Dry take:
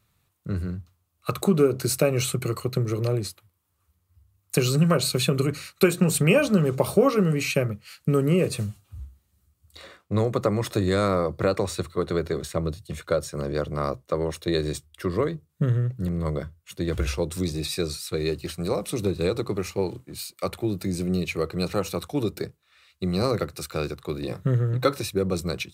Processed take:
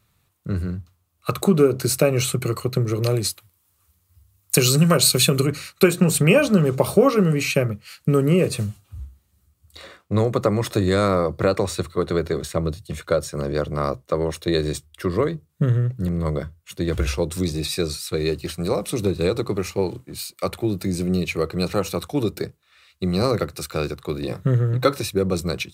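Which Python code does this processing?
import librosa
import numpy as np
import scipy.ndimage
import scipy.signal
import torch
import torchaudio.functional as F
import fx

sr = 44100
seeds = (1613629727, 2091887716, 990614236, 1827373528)

y = fx.high_shelf(x, sr, hz=fx.line((3.02, 2400.0), (5.4, 3900.0)), db=9.0, at=(3.02, 5.4), fade=0.02)
y = y * 10.0 ** (3.5 / 20.0)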